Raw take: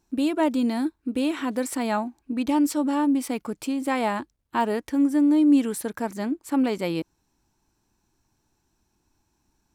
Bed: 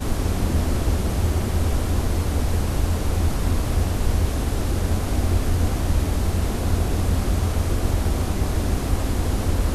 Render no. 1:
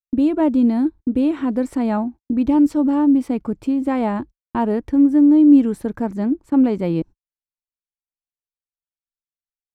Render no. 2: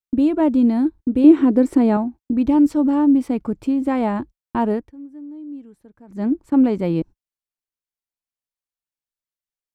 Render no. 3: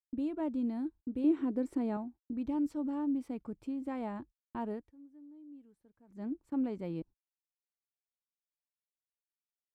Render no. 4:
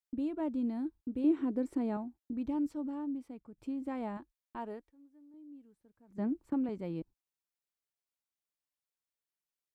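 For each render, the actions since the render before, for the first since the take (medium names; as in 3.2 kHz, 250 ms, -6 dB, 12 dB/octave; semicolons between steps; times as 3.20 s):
gate -39 dBFS, range -56 dB; tilt EQ -4 dB/octave
1.24–1.97 s: peaking EQ 350 Hz +13 dB; 4.72–6.26 s: dip -23.5 dB, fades 0.19 s
trim -18 dB
2.48–3.58 s: fade out, to -12 dB; 4.17–5.34 s: peaking EQ 110 Hz -12 dB 2.5 oct; 6.18–6.69 s: three bands compressed up and down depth 100%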